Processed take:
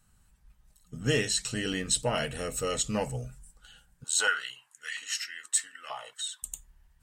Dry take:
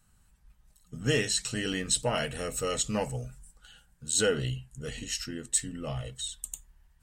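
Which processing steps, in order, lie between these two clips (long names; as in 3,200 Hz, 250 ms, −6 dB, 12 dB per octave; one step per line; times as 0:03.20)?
0:04.04–0:06.43: high-pass on a step sequencer 4.3 Hz 920–2,000 Hz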